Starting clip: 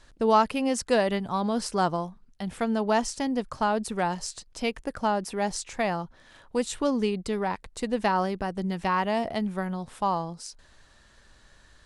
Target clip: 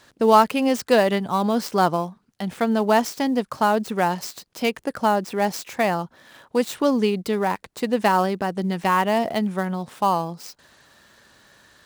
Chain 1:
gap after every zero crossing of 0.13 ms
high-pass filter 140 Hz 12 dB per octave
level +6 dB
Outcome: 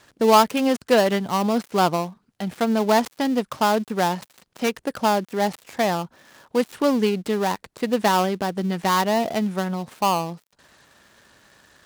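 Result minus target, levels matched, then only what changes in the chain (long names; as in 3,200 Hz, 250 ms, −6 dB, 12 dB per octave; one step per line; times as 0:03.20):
gap after every zero crossing: distortion +7 dB
change: gap after every zero crossing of 0.049 ms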